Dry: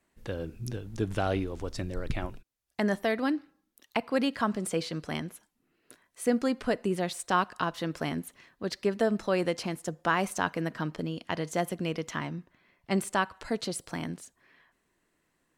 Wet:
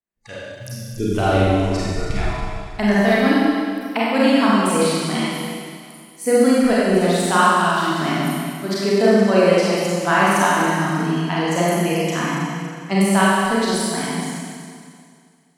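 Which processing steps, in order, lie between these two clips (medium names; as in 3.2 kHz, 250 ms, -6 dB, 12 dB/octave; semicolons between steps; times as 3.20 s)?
spectral noise reduction 29 dB; Schroeder reverb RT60 2.2 s, combs from 31 ms, DRR -8 dB; trim +5 dB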